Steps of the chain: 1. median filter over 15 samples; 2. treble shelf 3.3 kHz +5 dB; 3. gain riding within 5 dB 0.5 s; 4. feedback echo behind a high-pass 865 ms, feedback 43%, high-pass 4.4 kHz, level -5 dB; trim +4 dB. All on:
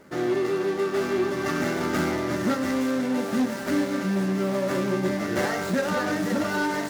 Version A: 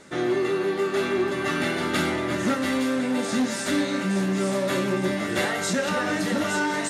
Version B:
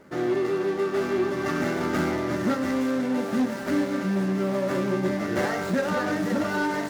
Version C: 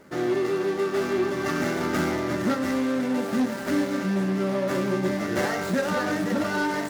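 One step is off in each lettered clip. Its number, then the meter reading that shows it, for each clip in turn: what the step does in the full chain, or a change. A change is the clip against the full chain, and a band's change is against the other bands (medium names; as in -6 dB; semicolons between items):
1, 8 kHz band +5.0 dB; 2, 8 kHz band -4.0 dB; 4, echo-to-direct -19.0 dB to none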